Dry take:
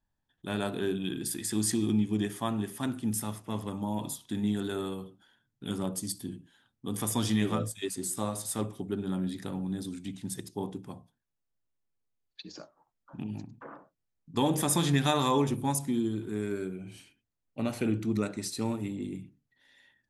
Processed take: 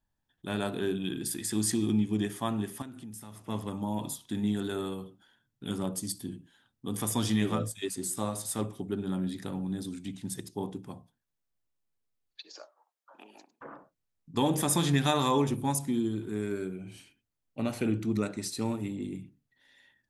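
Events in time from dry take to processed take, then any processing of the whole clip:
0:02.82–0:03.46: downward compressor 4 to 1, threshold −43 dBFS
0:12.42–0:13.61: high-pass filter 460 Hz 24 dB per octave

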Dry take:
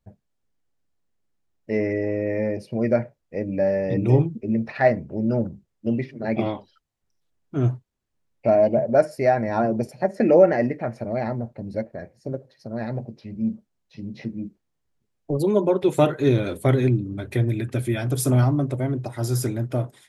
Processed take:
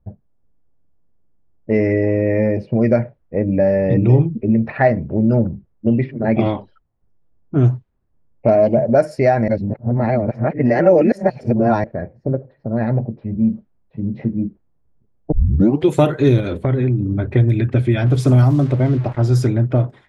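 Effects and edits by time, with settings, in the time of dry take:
0:03.00–0:06.40: high-frequency loss of the air 120 metres
0:07.65–0:08.74: highs frequency-modulated by the lows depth 0.19 ms
0:09.48–0:11.84: reverse
0:12.35–0:14.12: low-pass that shuts in the quiet parts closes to 2,400 Hz, open at −22 dBFS
0:15.32: tape start 0.56 s
0:16.40–0:17.07: downward compressor 4 to 1, threshold −25 dBFS
0:18.06–0:19.27: centre clipping without the shift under −38.5 dBFS
whole clip: low-pass that shuts in the quiet parts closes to 900 Hz, open at −14.5 dBFS; low-shelf EQ 150 Hz +7.5 dB; downward compressor 2 to 1, threshold −22 dBFS; level +8.5 dB

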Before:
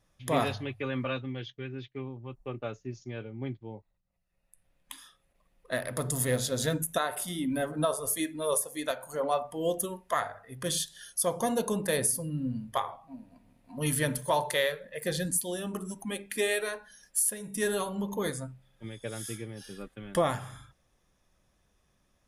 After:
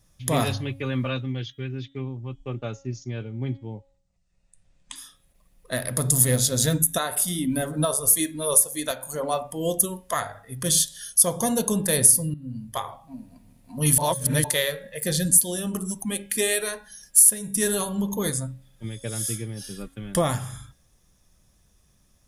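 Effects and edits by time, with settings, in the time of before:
0:01.86–0:04.96: Butterworth low-pass 8,500 Hz 48 dB per octave
0:12.34–0:12.93: fade in, from −18.5 dB
0:13.98–0:14.44: reverse
whole clip: bass and treble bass +8 dB, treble +11 dB; hum removal 274.5 Hz, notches 14; level +2 dB

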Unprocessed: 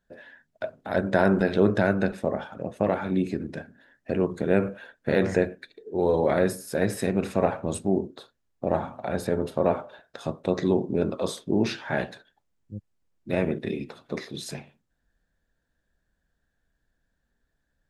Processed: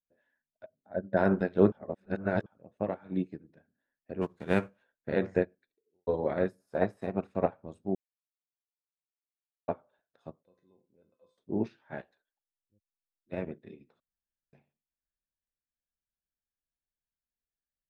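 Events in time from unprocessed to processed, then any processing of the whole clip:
0:00.66–0:01.17: expanding power law on the bin magnitudes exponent 1.6
0:01.72–0:02.46: reverse
0:02.98–0:03.54: comb filter 6.4 ms, depth 34%
0:04.21–0:04.82: spectral envelope flattened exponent 0.6
0:05.54–0:06.07: fade out and dull
0:06.60–0:07.27: flat-topped bell 890 Hz +8.5 dB 1.3 octaves
0:07.95–0:09.68: silence
0:10.43–0:11.38: tuned comb filter 510 Hz, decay 0.26 s, mix 90%
0:12.01–0:13.32: parametric band 140 Hz −14.5 dB 1.9 octaves
0:14.00–0:14.53: fill with room tone
whole clip: low-pass filter 2,300 Hz 6 dB per octave; expander for the loud parts 2.5 to 1, over −34 dBFS

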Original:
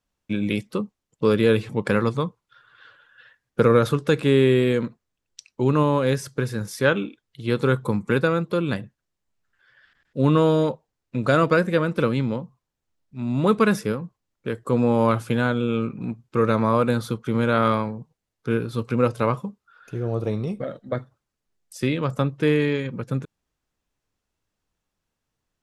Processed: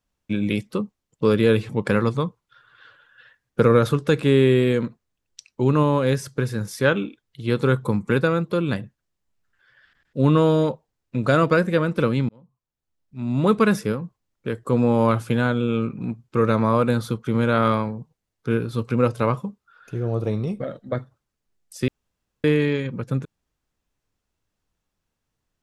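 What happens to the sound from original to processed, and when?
0:12.29–0:13.39: fade in
0:21.88–0:22.44: fill with room tone
whole clip: low-shelf EQ 180 Hz +3 dB

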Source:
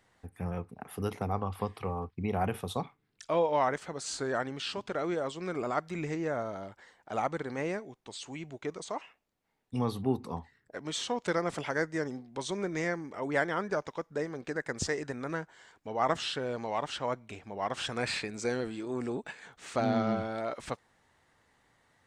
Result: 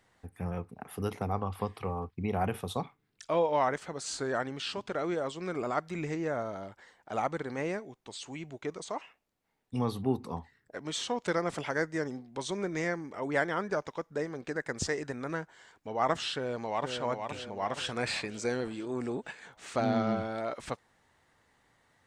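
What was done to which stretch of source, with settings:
0:16.35–0:16.99: delay throw 470 ms, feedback 50%, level −5.5 dB

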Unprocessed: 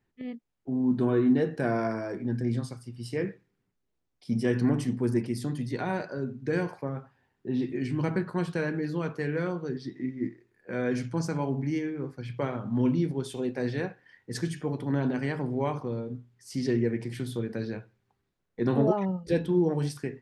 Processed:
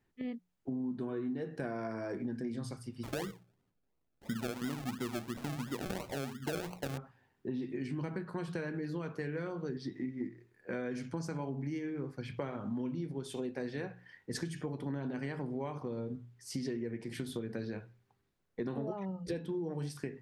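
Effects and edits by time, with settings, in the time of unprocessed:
0:03.03–0:06.98: sample-and-hold swept by an LFO 36×, swing 60% 2.9 Hz
whole clip: mains-hum notches 60/120/180 Hz; downward compressor 10 to 1, threshold −34 dBFS

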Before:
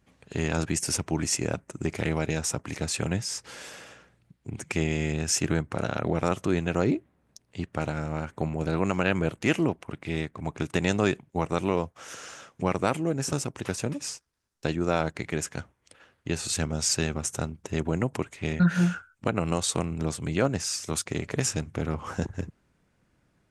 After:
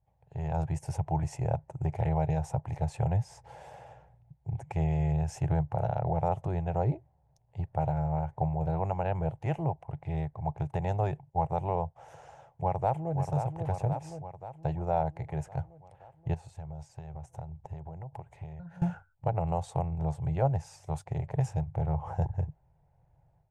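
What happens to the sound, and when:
0:12.28–0:13.15: delay throw 530 ms, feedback 60%, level −7.5 dB
0:16.34–0:18.82: downward compressor 5 to 1, threshold −40 dBFS
whole clip: automatic gain control gain up to 11.5 dB; drawn EQ curve 150 Hz 0 dB, 220 Hz −27 dB, 840 Hz +3 dB, 1,200 Hz −20 dB, 1,900 Hz −19 dB, 4,800 Hz −28 dB, 11,000 Hz −25 dB; level −5 dB

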